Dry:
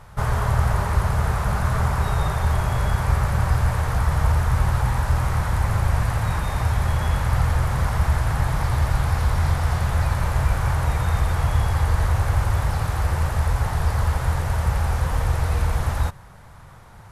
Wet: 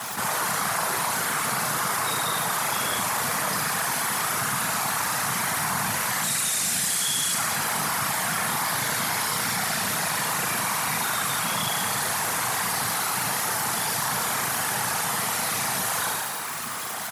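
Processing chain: 6.23–7.34 s: graphic EQ 1/4/8 kHz -8/+3/+10 dB; flutter echo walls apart 6.3 m, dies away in 0.81 s; crackle 91 per s -41 dBFS; tilt EQ +4 dB/octave; comb 6.9 ms, depth 98%; whisper effect; high-pass 120 Hz 24 dB/octave; band-stop 560 Hz, Q 12; level flattener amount 70%; trim -8 dB

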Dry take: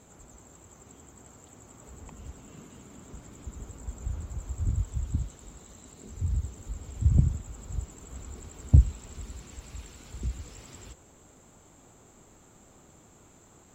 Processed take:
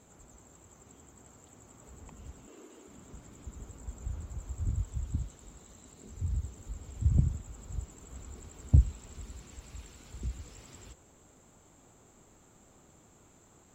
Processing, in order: 2.47–2.88 s: resonant low shelf 230 Hz -13.5 dB, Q 3; trim -4 dB

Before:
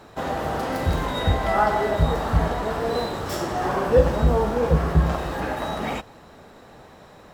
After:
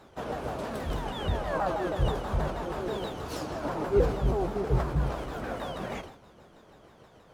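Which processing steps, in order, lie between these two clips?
sawtooth pitch modulation -5 st, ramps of 160 ms; decay stretcher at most 93 dB/s; trim -7 dB

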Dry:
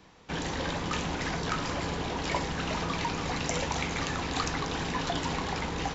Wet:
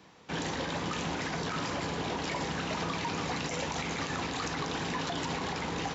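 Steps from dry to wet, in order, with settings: high-pass 100 Hz 12 dB/octave; peak limiter -24 dBFS, peak gain reduction 10 dB

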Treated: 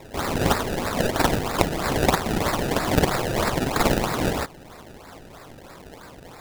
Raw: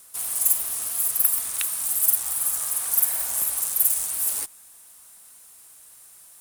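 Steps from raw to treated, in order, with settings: treble shelf 6.9 kHz -10.5 dB; in parallel at -2.5 dB: compression, threshold -42 dBFS, peak gain reduction 18 dB; on the sum: decimation with a swept rate 28×, swing 100% 3.1 Hz; trim +8 dB

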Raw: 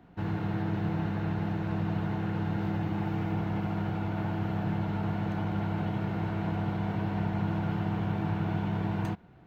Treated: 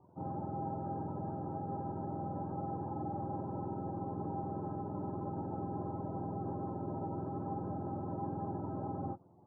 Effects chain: spectrum inverted on a logarithmic axis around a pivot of 510 Hz; Chebyshev low-pass 1 kHz, order 5

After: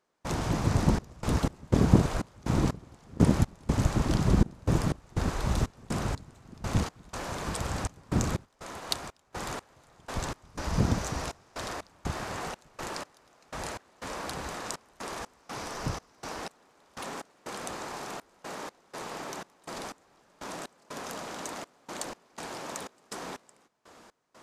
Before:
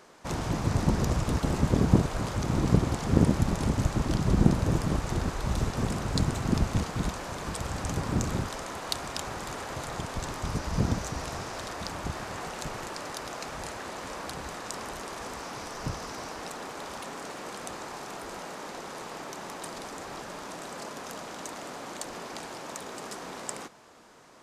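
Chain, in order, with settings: trance gate ".xxx.x.xx.x..x" 61 bpm -24 dB; 8.45–9.33 s: upward expansion 1.5:1, over -46 dBFS; trim +1 dB

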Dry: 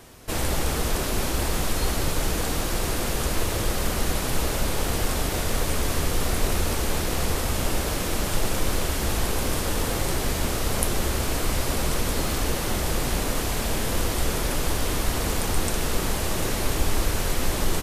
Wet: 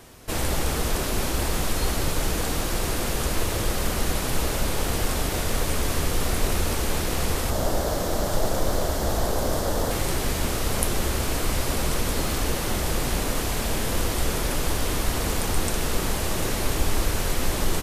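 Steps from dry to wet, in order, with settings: 7.50–9.91 s: fifteen-band graphic EQ 630 Hz +8 dB, 2.5 kHz -9 dB, 10 kHz -4 dB

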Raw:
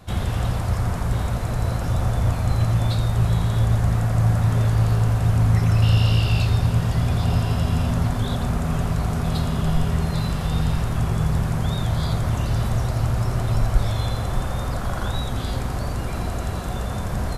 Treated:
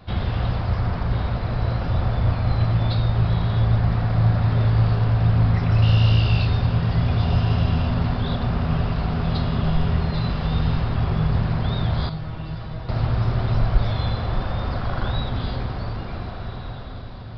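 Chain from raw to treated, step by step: fade out at the end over 2.24 s; echo that smears into a reverb 1485 ms, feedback 58%, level -12.5 dB; resampled via 11.025 kHz; 12.09–12.89 s: feedback comb 160 Hz, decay 0.23 s, harmonics all, mix 80%

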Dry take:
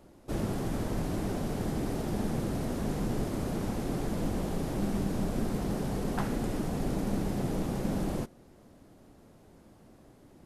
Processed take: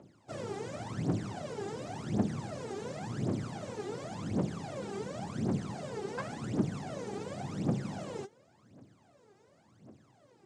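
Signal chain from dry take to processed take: phaser 0.91 Hz, delay 2.6 ms, feedback 80%; elliptic band-pass 110–7700 Hz, stop band 40 dB; trim -7 dB

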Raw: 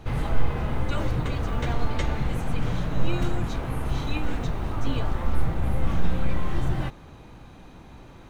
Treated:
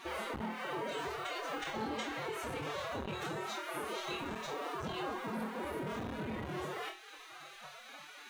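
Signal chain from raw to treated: spectral gate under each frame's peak -20 dB weak; compression 2.5:1, threshold -47 dBFS, peak gain reduction 13.5 dB; on a send: flutter echo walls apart 4.3 m, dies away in 0.34 s; on the sum: formant-preserving pitch shift +10.5 st; transformer saturation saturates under 630 Hz; trim +6 dB

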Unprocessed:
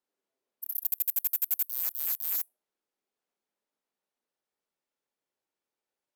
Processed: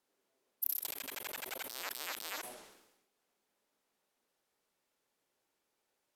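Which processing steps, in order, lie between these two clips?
low-pass that closes with the level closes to 3 kHz, closed at -25.5 dBFS; decay stretcher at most 58 dB/s; trim +8 dB

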